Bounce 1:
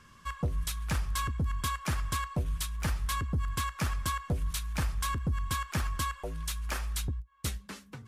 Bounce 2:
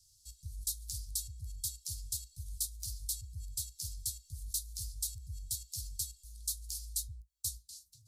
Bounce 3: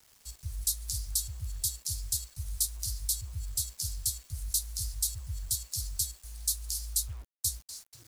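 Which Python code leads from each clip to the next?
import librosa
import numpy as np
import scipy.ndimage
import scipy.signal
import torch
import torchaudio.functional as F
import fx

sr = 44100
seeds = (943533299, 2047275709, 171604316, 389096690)

y1 = scipy.signal.sosfilt(scipy.signal.cheby1(4, 1.0, [110.0, 4200.0], 'bandstop', fs=sr, output='sos'), x)
y1 = fx.bass_treble(y1, sr, bass_db=-6, treble_db=10)
y1 = y1 * librosa.db_to_amplitude(-6.0)
y2 = fx.quant_dither(y1, sr, seeds[0], bits=10, dither='none')
y2 = y2 * librosa.db_to_amplitude(6.5)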